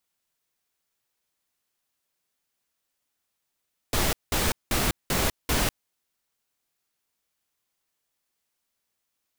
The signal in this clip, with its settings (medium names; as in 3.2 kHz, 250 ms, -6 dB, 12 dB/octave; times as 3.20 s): noise bursts pink, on 0.20 s, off 0.19 s, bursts 5, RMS -24 dBFS